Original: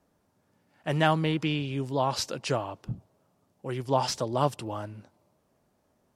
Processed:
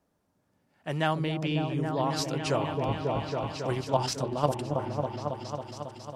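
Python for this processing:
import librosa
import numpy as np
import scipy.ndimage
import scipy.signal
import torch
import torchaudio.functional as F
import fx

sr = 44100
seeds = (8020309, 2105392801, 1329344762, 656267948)

y = fx.level_steps(x, sr, step_db=11, at=(3.72, 4.95))
y = fx.echo_opening(y, sr, ms=274, hz=400, octaves=1, feedback_pct=70, wet_db=-3)
y = fx.rider(y, sr, range_db=4, speed_s=0.5)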